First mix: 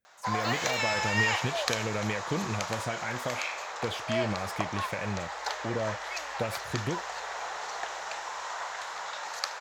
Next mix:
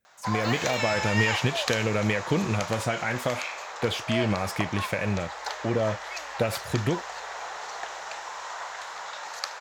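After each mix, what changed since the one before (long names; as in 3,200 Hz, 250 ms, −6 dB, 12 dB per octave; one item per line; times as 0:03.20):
speech +6.5 dB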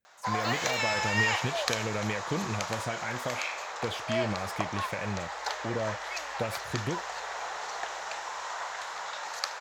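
speech −7.0 dB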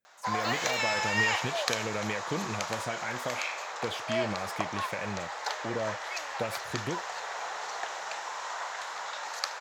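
master: add high-pass filter 160 Hz 6 dB per octave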